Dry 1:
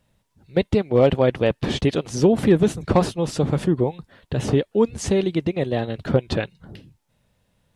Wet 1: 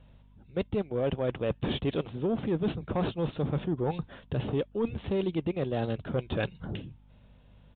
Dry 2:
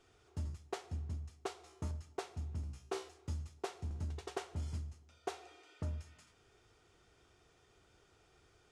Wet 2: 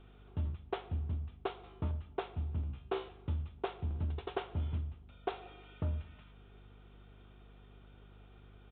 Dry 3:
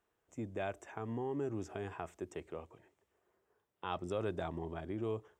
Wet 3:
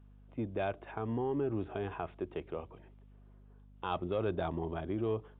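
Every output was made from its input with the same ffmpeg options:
-af "equalizer=f=1.9k:t=o:w=0.39:g=-5,areverse,acompressor=threshold=-30dB:ratio=8,areverse,aeval=exprs='val(0)+0.000891*(sin(2*PI*50*n/s)+sin(2*PI*2*50*n/s)/2+sin(2*PI*3*50*n/s)/3+sin(2*PI*4*50*n/s)/4+sin(2*PI*5*50*n/s)/5)':c=same,asoftclip=type=tanh:threshold=-25dB,aresample=8000,aresample=44100,volume=5dB"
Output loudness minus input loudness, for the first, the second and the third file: -10.5, +4.5, +4.0 LU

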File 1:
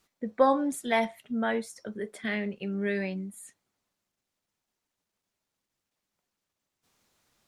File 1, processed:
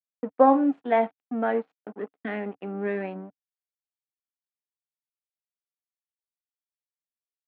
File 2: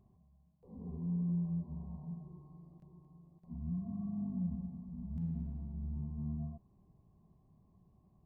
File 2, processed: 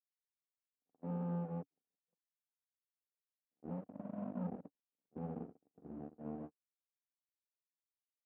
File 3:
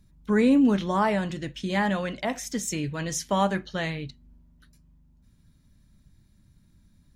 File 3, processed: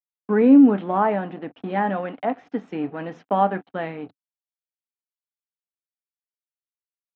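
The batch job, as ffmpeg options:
-af "aeval=exprs='sgn(val(0))*max(abs(val(0))-0.00841,0)':c=same,agate=range=-47dB:threshold=-45dB:ratio=16:detection=peak,highpass=f=120:w=0.5412,highpass=f=120:w=1.3066,equalizer=f=140:t=q:w=4:g=-8,equalizer=f=280:t=q:w=4:g=9,equalizer=f=460:t=q:w=4:g=6,equalizer=f=750:t=q:w=4:g=10,equalizer=f=1.3k:t=q:w=4:g=3,equalizer=f=2.1k:t=q:w=4:g=-4,lowpass=f=2.5k:w=0.5412,lowpass=f=2.5k:w=1.3066"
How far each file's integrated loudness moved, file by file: +4.5, -5.0, +5.0 LU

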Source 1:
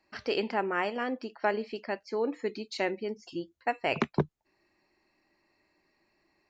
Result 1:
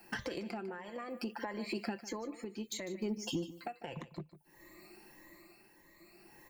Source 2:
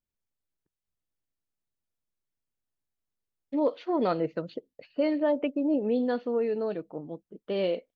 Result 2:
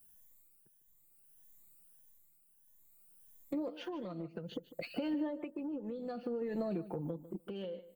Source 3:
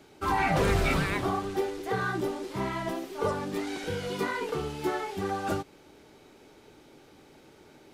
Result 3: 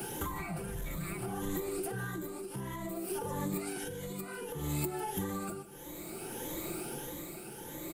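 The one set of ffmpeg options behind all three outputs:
-filter_complex "[0:a]afftfilt=real='re*pow(10,11/40*sin(2*PI*(1.1*log(max(b,1)*sr/1024/100)/log(2)-(1.6)*(pts-256)/sr)))':imag='im*pow(10,11/40*sin(2*PI*(1.1*log(max(b,1)*sr/1024/100)/log(2)-(1.6)*(pts-256)/sr)))':win_size=1024:overlap=0.75,lowshelf=f=450:g=3.5,aecho=1:1:5.8:0.5,acompressor=threshold=-34dB:ratio=6,alimiter=level_in=8.5dB:limit=-24dB:level=0:latency=1:release=426,volume=-8.5dB,acrossover=split=220[a][b];[b]acompressor=threshold=-46dB:ratio=6[c];[a][c]amix=inputs=2:normalize=0,asoftclip=type=tanh:threshold=-34.5dB,aexciter=amount=6.6:drive=6.1:freq=7.6k,tremolo=f=0.6:d=0.52,asplit=2[d][e];[e]aecho=0:1:150|300:0.178|0.0302[f];[d][f]amix=inputs=2:normalize=0,volume=10.5dB"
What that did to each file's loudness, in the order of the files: -8.5, -11.5, -8.5 LU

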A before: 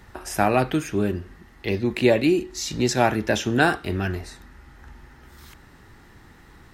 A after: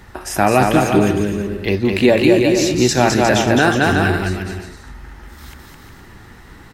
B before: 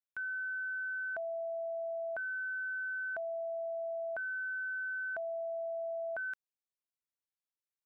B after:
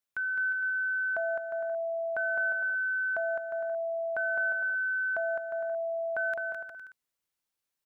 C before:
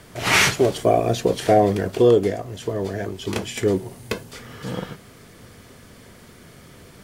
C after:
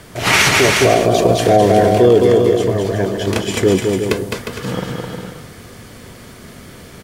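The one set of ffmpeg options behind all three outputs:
-af "aecho=1:1:210|357|459.9|531.9|582.4:0.631|0.398|0.251|0.158|0.1,alimiter=level_in=7.5dB:limit=-1dB:release=50:level=0:latency=1,volume=-1dB"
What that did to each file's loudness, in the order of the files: +7.5, +7.0, +7.0 LU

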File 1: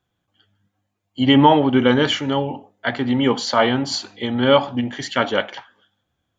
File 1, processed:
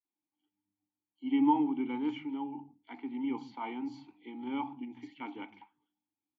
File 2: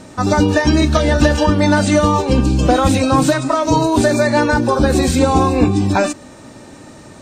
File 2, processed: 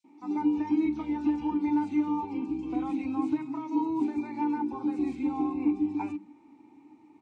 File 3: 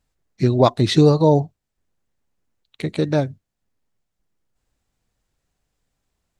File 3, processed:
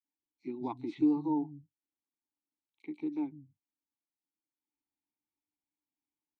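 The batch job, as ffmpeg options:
-filter_complex "[0:a]adynamicequalizer=threshold=0.01:dfrequency=1500:dqfactor=6.3:tfrequency=1500:tqfactor=6.3:attack=5:release=100:ratio=0.375:range=3.5:mode=boostabove:tftype=bell,asplit=3[a][b][c];[a]bandpass=f=300:t=q:w=8,volume=0dB[d];[b]bandpass=f=870:t=q:w=8,volume=-6dB[e];[c]bandpass=f=2.24k:t=q:w=8,volume=-9dB[f];[d][e][f]amix=inputs=3:normalize=0,acrossover=split=170|4000[g][h][i];[h]adelay=40[j];[g]adelay=190[k];[k][j][i]amix=inputs=3:normalize=0,volume=-7.5dB"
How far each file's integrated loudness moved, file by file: -16.0, -15.5, -16.5 LU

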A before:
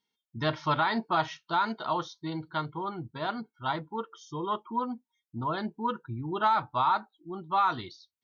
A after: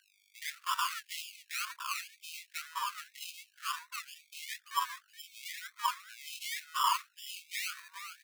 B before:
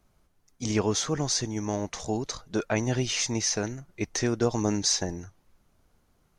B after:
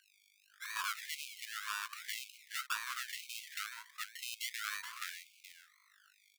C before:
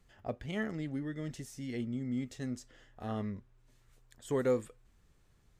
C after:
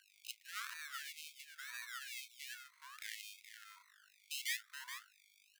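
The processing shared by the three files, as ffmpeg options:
-filter_complex "[0:a]highpass=f=110:w=0.5412,highpass=f=110:w=1.3066,aresample=8000,asoftclip=type=hard:threshold=-21.5dB,aresample=44100,aeval=exprs='val(0)+0.00282*(sin(2*PI*50*n/s)+sin(2*PI*2*50*n/s)/2+sin(2*PI*3*50*n/s)/3+sin(2*PI*4*50*n/s)/4+sin(2*PI*5*50*n/s)/5)':c=same,afwtdn=0.00708,acompressor=threshold=-50dB:ratio=1.5,acrusher=samples=30:mix=1:aa=0.000001:lfo=1:lforange=18:lforate=0.99,tiltshelf=f=690:g=7,asplit=2[a][b];[b]aecho=0:1:424:0.316[c];[a][c]amix=inputs=2:normalize=0,afftfilt=real='re*gte(b*sr/1024,930*pow(2200/930,0.5+0.5*sin(2*PI*0.98*pts/sr)))':imag='im*gte(b*sr/1024,930*pow(2200/930,0.5+0.5*sin(2*PI*0.98*pts/sr)))':win_size=1024:overlap=0.75,volume=12.5dB"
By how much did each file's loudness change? -7.0, -13.0, -8.5 LU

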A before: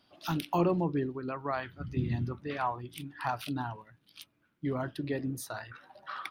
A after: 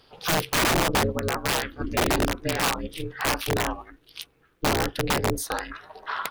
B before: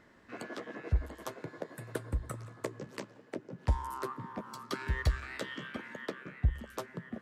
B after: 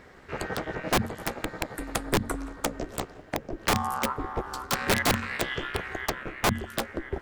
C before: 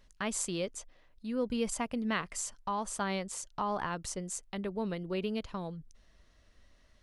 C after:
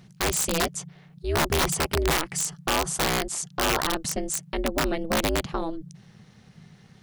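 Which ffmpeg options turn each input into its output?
-af "apsyclip=20.5dB,aeval=exprs='val(0)*sin(2*PI*160*n/s)':c=same,aeval=exprs='(mod(2.51*val(0)+1,2)-1)/2.51':c=same,volume=-7.5dB"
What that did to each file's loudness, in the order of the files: +9.0, +8.5, +10.0 LU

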